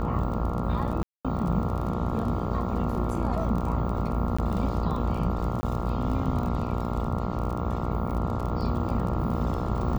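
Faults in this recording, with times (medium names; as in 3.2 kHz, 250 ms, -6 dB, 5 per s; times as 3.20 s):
buzz 60 Hz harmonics 23 -32 dBFS
crackle 26 per s -32 dBFS
1.03–1.25 s: dropout 216 ms
4.37–4.38 s: dropout 15 ms
5.61–5.63 s: dropout 20 ms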